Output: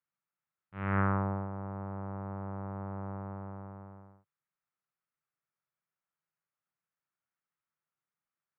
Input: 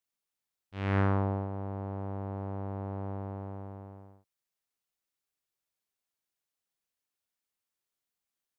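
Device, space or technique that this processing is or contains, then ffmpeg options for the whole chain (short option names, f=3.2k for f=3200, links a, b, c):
bass cabinet: -af "highpass=78,equalizer=f=78:t=q:w=4:g=-10,equalizer=f=150:t=q:w=4:g=9,equalizer=f=270:t=q:w=4:g=-8,equalizer=f=440:t=q:w=4:g=-7,equalizer=f=710:t=q:w=4:g=-3,equalizer=f=1.3k:t=q:w=4:g=6,lowpass=f=2.2k:w=0.5412,lowpass=f=2.2k:w=1.3066"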